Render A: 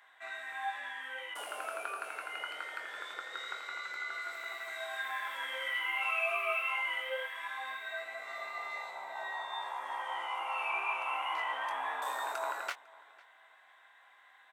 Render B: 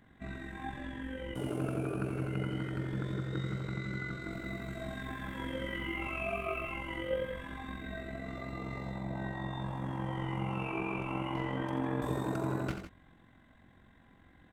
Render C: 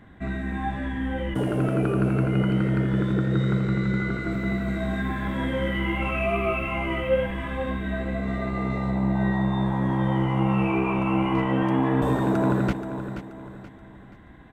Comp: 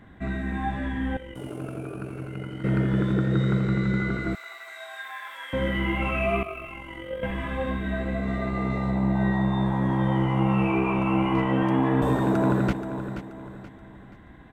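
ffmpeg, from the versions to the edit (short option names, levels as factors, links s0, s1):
-filter_complex "[1:a]asplit=2[s0][s1];[2:a]asplit=4[s2][s3][s4][s5];[s2]atrim=end=1.172[s6];[s0]atrim=start=1.168:end=2.642[s7];[s3]atrim=start=2.638:end=4.352[s8];[0:a]atrim=start=4.348:end=5.532[s9];[s4]atrim=start=5.528:end=6.432[s10];[s1]atrim=start=6.428:end=7.232[s11];[s5]atrim=start=7.228[s12];[s6][s7]acrossfade=d=0.004:c1=hsin:c2=hsin[s13];[s13][s8]acrossfade=d=0.004:c1=hsin:c2=hsin[s14];[s14][s9]acrossfade=d=0.004:c1=hsin:c2=hsin[s15];[s15][s10]acrossfade=d=0.004:c1=hsin:c2=hsin[s16];[s16][s11]acrossfade=d=0.004:c1=hsin:c2=hsin[s17];[s17][s12]acrossfade=d=0.004:c1=hsin:c2=hsin"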